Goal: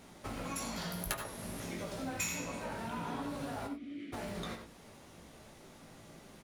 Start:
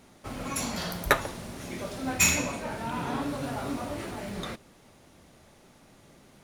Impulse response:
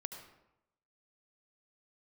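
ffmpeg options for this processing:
-filter_complex "[0:a]aeval=exprs='(mod(2.82*val(0)+1,2)-1)/2.82':c=same,asettb=1/sr,asplit=3[s0][s1][s2];[s0]atrim=end=0.934[s3];[s1]atrim=start=0.93:end=1.6,asetpts=PTS-STARTPTS,afade=t=in:d=0.004:c=qsin,afade=t=out:st=0.666:d=0.004:c=qsin,equalizer=f=11000:w=3.7:g=13[s4];[s2]atrim=start=1.596[s5];[s3][s4]acrossfade=d=0.004:c1=hsin:c2=qsin[s6];[s6][s5]acrossfade=d=0.004:c1=qsin:c2=hsin,asplit=3[s7][s8][s9];[s7]afade=t=out:st=3.66:d=0.02[s10];[s8]asplit=3[s11][s12][s13];[s11]bandpass=f=270:t=q:w=8,volume=1[s14];[s12]bandpass=f=2290:t=q:w=8,volume=0.501[s15];[s13]bandpass=f=3010:t=q:w=8,volume=0.355[s16];[s14][s15][s16]amix=inputs=3:normalize=0,afade=t=in:st=3.66:d=0.02,afade=t=out:st=4.12:d=0.02[s17];[s9]afade=t=in:st=4.12:d=0.02[s18];[s10][s17][s18]amix=inputs=3:normalize=0,asplit=2[s19][s20];[s20]adelay=18,volume=0.447[s21];[s19][s21]amix=inputs=2:normalize=0,bandreject=f=59.49:t=h:w=4,bandreject=f=118.98:t=h:w=4[s22];[1:a]atrim=start_sample=2205,atrim=end_sample=4410[s23];[s22][s23]afir=irnorm=-1:irlink=0,acompressor=threshold=0.00708:ratio=3,volume=1.5"

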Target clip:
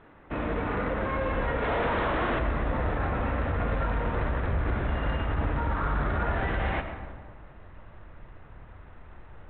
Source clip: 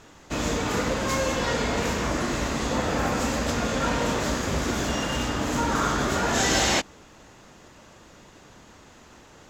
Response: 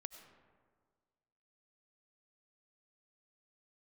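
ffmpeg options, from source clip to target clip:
-filter_complex "[0:a]lowpass=f=2200:w=0.5412,lowpass=f=2200:w=1.3066,bandreject=f=60:t=h:w=6,bandreject=f=120:t=h:w=6,bandreject=f=180:t=h:w=6,bandreject=f=240:t=h:w=6,asubboost=boost=6.5:cutoff=94,alimiter=limit=0.126:level=0:latency=1:release=31,asettb=1/sr,asplit=3[s0][s1][s2];[s0]atrim=end=1.624[s3];[s1]atrim=start=1.62:end=2.39,asetpts=PTS-STARTPTS,afade=t=in:d=0.004:c=qsin,afade=t=out:st=0.766:d=0.004:c=qsin,asplit=2[s4][s5];[s5]highpass=f=720:p=1,volume=79.4,asoftclip=type=tanh:threshold=0.126[s6];[s4][s6]amix=inputs=2:normalize=0,lowpass=f=1200:p=1,volume=0.501[s7];[s2]atrim=start=2.386[s8];[s3][s7]acrossfade=d=0.004:c1=hsin:c2=qsin[s9];[s9][s8]acrossfade=d=0.004:c1=qsin:c2=hsin[s10];[1:a]atrim=start_sample=2205[s11];[s10][s11]afir=irnorm=-1:irlink=0,volume=1.41" -ar 8000 -c:a adpcm_g726 -b:a 32k

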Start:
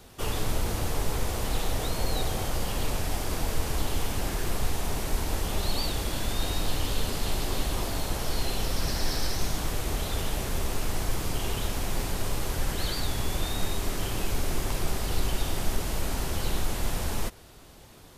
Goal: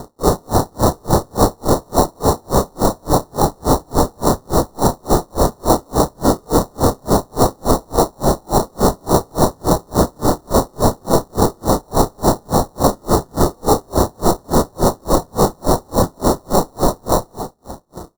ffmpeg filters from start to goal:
-filter_complex "[0:a]aemphasis=mode=production:type=bsi,aresample=16000,aeval=exprs='0.0355*(abs(mod(val(0)/0.0355+3,4)-2)-1)':c=same,aresample=44100,acrusher=samples=27:mix=1:aa=0.000001,aeval=exprs='sgn(val(0))*max(abs(val(0))-0.001,0)':c=same,asuperstop=centerf=2400:order=4:qfactor=0.71,equalizer=f=1700:t=o:w=0.25:g=13.5,asplit=2[s0][s1];[s1]aecho=0:1:30|69|119.7|185.6|271.3:0.631|0.398|0.251|0.158|0.1[s2];[s0][s2]amix=inputs=2:normalize=0,alimiter=level_in=20:limit=0.891:release=50:level=0:latency=1,aeval=exprs='val(0)*pow(10,-40*(0.5-0.5*cos(2*PI*3.5*n/s))/20)':c=same"

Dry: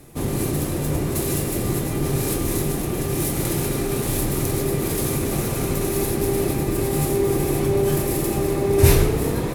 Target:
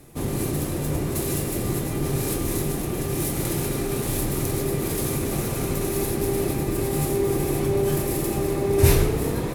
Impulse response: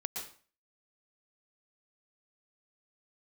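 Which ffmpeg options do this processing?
-af "volume=0.75"

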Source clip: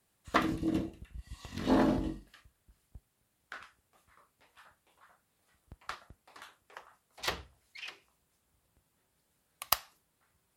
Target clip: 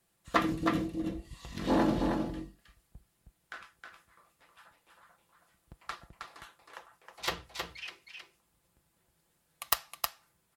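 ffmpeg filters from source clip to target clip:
-af "aecho=1:1:5.9:0.38,aecho=1:1:316:0.562,aeval=exprs='(mod(2.37*val(0)+1,2)-1)/2.37':c=same"

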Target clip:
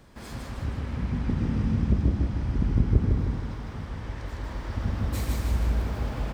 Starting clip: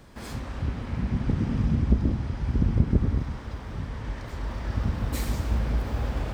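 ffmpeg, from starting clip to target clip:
-af "aecho=1:1:156|312|468|624|780|936|1092:0.708|0.361|0.184|0.0939|0.0479|0.0244|0.0125,volume=0.708"

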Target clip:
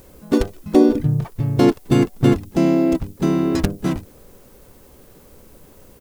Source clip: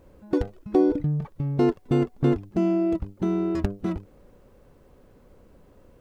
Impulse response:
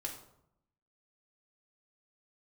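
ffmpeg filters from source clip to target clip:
-filter_complex "[0:a]crystalizer=i=4:c=0,asplit=3[s0][s1][s2];[s1]asetrate=35002,aresample=44100,atempo=1.25992,volume=0.708[s3];[s2]asetrate=55563,aresample=44100,atempo=0.793701,volume=0.141[s4];[s0][s3][s4]amix=inputs=3:normalize=0,volume=1.68"

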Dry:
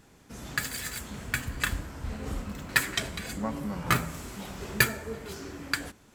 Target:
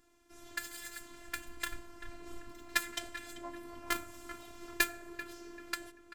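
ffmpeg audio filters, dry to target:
-filter_complex "[0:a]asplit=2[s0][s1];[s1]adelay=389,lowpass=f=2000:p=1,volume=0.376,asplit=2[s2][s3];[s3]adelay=389,lowpass=f=2000:p=1,volume=0.39,asplit=2[s4][s5];[s5]adelay=389,lowpass=f=2000:p=1,volume=0.39,asplit=2[s6][s7];[s7]adelay=389,lowpass=f=2000:p=1,volume=0.39[s8];[s0][s2][s4][s6][s8]amix=inputs=5:normalize=0,afftfilt=real='hypot(re,im)*cos(PI*b)':imag='0':win_size=512:overlap=0.75,aeval=exprs='0.794*(cos(1*acos(clip(val(0)/0.794,-1,1)))-cos(1*PI/2))+0.0447*(cos(7*acos(clip(val(0)/0.794,-1,1)))-cos(7*PI/2))':c=same,volume=0.708"

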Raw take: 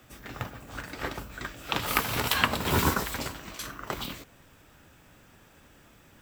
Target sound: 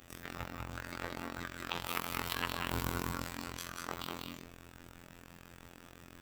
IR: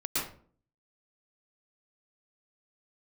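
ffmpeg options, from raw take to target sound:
-filter_complex "[0:a]asplit=2[s0][s1];[1:a]atrim=start_sample=2205,adelay=71[s2];[s1][s2]afir=irnorm=-1:irlink=0,volume=0.376[s3];[s0][s3]amix=inputs=2:normalize=0,afftfilt=real='hypot(re,im)*cos(PI*b)':imag='0':win_size=2048:overlap=0.75,acompressor=threshold=0.00708:ratio=2,aeval=exprs='val(0)*sin(2*PI*23*n/s)':c=same,volume=1.88"

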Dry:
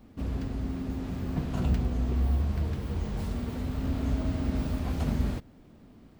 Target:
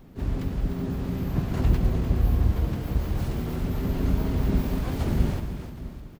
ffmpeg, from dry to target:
-filter_complex "[0:a]aecho=1:1:111|302|614|770:0.237|0.355|0.158|0.119,asplit=4[s0][s1][s2][s3];[s1]asetrate=29433,aresample=44100,atempo=1.49831,volume=1[s4];[s2]asetrate=33038,aresample=44100,atempo=1.33484,volume=0.447[s5];[s3]asetrate=66075,aresample=44100,atempo=0.66742,volume=0.501[s6];[s0][s4][s5][s6]amix=inputs=4:normalize=0"

